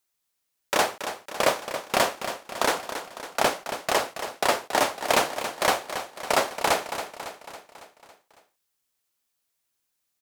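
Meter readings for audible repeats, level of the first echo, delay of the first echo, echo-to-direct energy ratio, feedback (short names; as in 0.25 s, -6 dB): 5, -10.0 dB, 0.277 s, -8.5 dB, 56%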